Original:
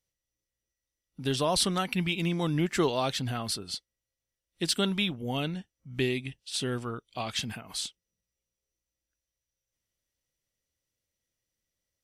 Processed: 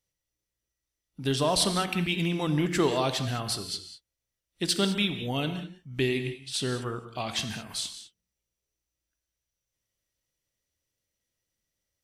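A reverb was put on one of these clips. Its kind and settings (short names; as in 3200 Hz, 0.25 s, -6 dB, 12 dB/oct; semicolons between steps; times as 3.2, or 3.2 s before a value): non-linear reverb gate 0.23 s flat, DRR 8 dB; gain +1 dB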